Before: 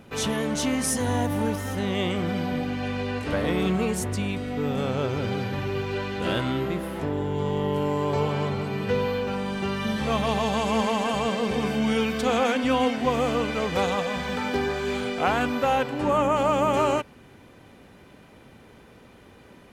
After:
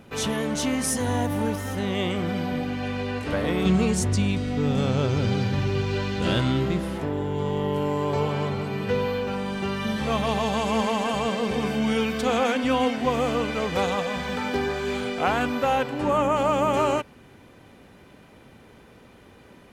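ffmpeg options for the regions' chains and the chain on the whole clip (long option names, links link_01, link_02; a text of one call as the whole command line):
ffmpeg -i in.wav -filter_complex "[0:a]asettb=1/sr,asplit=3[link_01][link_02][link_03];[link_01]atrim=end=3.654[link_04];[link_02]atrim=start=3.65:end=6.98,asetpts=PTS-STARTPTS,afade=type=in:duration=0.004:curve=qsin,afade=type=out:start_time=3.326:duration=0.004:curve=qsin,lowpass=6100,bass=frequency=250:gain=7,treble=frequency=4000:gain=11,aeval=exprs='sgn(val(0))*max(abs(val(0))-0.00188,0)':channel_layout=same[link_05];[link_03]atrim=start=6.976[link_06];[link_04][link_05]acrossfade=duration=0.004:curve1=hsin:curve2=qsin[link_07];[link_07][link_06]acrossfade=duration=0.004:curve1=qsin:curve2=hsin" out.wav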